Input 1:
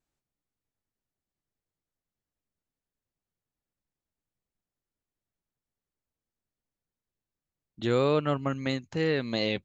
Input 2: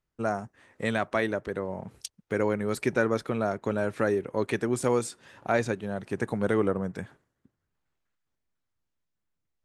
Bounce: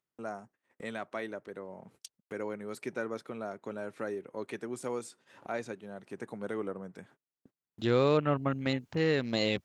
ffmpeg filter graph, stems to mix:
-filter_complex "[0:a]afwtdn=0.00708,volume=0.891,asplit=2[s0][s1];[1:a]highpass=170,bandreject=f=1700:w=25,acompressor=mode=upward:threshold=0.0251:ratio=2.5,volume=0.299[s2];[s1]apad=whole_len=425454[s3];[s2][s3]sidechaincompress=threshold=0.0158:ratio=5:attack=8.3:release=505[s4];[s0][s4]amix=inputs=2:normalize=0,agate=range=0.0447:threshold=0.00112:ratio=16:detection=peak"

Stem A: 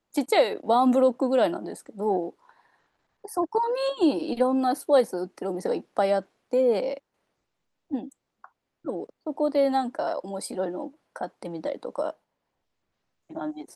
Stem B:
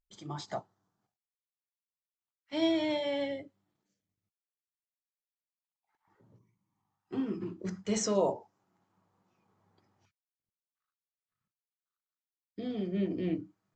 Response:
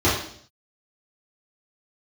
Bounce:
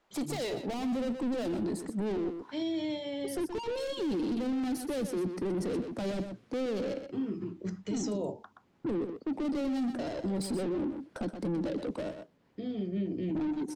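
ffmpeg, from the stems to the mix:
-filter_complex "[0:a]asubboost=boost=9:cutoff=250,asplit=2[s0][s1];[s1]highpass=f=720:p=1,volume=56.2,asoftclip=type=tanh:threshold=0.596[s2];[s0][s2]amix=inputs=2:normalize=0,lowpass=f=2000:p=1,volume=0.501,volume=0.158,asplit=2[s3][s4];[s4]volume=0.335[s5];[1:a]highshelf=f=4900:g=-6,volume=1.12[s6];[s5]aecho=0:1:124:1[s7];[s3][s6][s7]amix=inputs=3:normalize=0,acrossover=split=440|3000[s8][s9][s10];[s9]acompressor=threshold=0.00316:ratio=2.5[s11];[s8][s11][s10]amix=inputs=3:normalize=0,alimiter=level_in=1.26:limit=0.0631:level=0:latency=1:release=16,volume=0.794"

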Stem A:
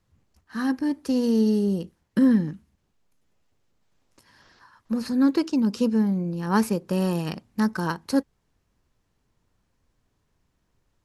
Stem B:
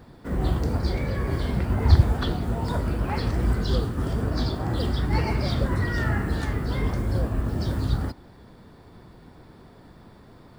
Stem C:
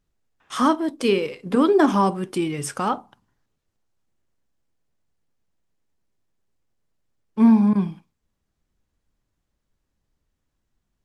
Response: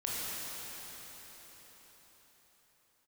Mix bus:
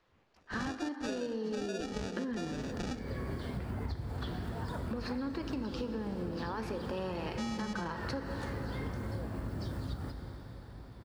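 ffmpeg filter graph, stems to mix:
-filter_complex "[0:a]acrossover=split=340 4400:gain=0.178 1 0.0708[s0][s1][s2];[s0][s1][s2]amix=inputs=3:normalize=0,alimiter=limit=0.0794:level=0:latency=1,acontrast=38,volume=1,asplit=2[s3][s4];[s4]volume=0.188[s5];[1:a]adelay=2000,volume=0.355,asplit=2[s6][s7];[s7]volume=0.211[s8];[2:a]acompressor=threshold=0.112:ratio=6,acrusher=samples=42:mix=1:aa=0.000001,lowpass=f=5900:t=q:w=1.8,volume=0.398,asplit=2[s9][s10];[s10]apad=whole_len=554959[s11];[s6][s11]sidechaincompress=threshold=0.00282:ratio=8:attack=16:release=134[s12];[s3][s12]amix=inputs=2:normalize=0,highpass=62,alimiter=limit=0.075:level=0:latency=1:release=299,volume=1[s13];[3:a]atrim=start_sample=2205[s14];[s5][s8]amix=inputs=2:normalize=0[s15];[s15][s14]afir=irnorm=-1:irlink=0[s16];[s9][s13][s16]amix=inputs=3:normalize=0,acompressor=threshold=0.02:ratio=6"

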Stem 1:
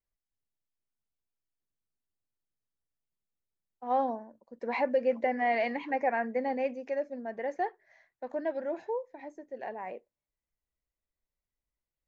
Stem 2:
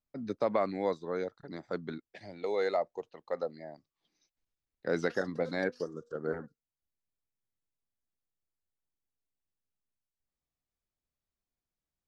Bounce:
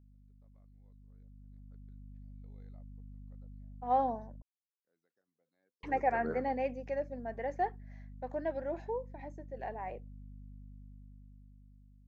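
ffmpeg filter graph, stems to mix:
-filter_complex "[0:a]equalizer=f=760:w=6.7:g=4.5,aeval=exprs='val(0)+0.00631*(sin(2*PI*50*n/s)+sin(2*PI*2*50*n/s)/2+sin(2*PI*3*50*n/s)/3+sin(2*PI*4*50*n/s)/4+sin(2*PI*5*50*n/s)/5)':c=same,volume=0.178,asplit=3[s0][s1][s2];[s0]atrim=end=4.42,asetpts=PTS-STARTPTS,afade=t=out:st=4.416:d=0.004:c=hsin[s3];[s1]atrim=start=4.42:end=5.83,asetpts=PTS-STARTPTS,volume=0[s4];[s2]atrim=start=5.83,asetpts=PTS-STARTPTS,afade=t=in:d=0.004:c=hsin[s5];[s3][s4][s5]concat=n=3:v=0:a=1,asplit=2[s6][s7];[1:a]volume=0.158,afade=t=in:st=4.79:d=0.8:silence=0.473151[s8];[s7]apad=whole_len=532636[s9];[s8][s9]sidechaingate=range=0.00708:threshold=0.00158:ratio=16:detection=peak[s10];[s6][s10]amix=inputs=2:normalize=0,dynaudnorm=f=340:g=9:m=3.76"

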